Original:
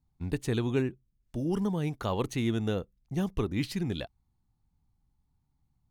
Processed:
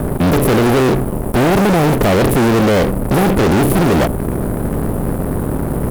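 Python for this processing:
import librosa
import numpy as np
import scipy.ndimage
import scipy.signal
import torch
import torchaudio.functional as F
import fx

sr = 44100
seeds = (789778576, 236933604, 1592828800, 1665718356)

y = fx.bin_compress(x, sr, power=0.4)
y = scipy.signal.sosfilt(scipy.signal.cheby1(4, 1.0, [620.0, 8100.0], 'bandstop', fs=sr, output='sos'), y)
y = fx.fuzz(y, sr, gain_db=41.0, gate_db=-49.0)
y = fx.formant_shift(y, sr, semitones=3)
y = F.gain(torch.from_numpy(y), 2.5).numpy()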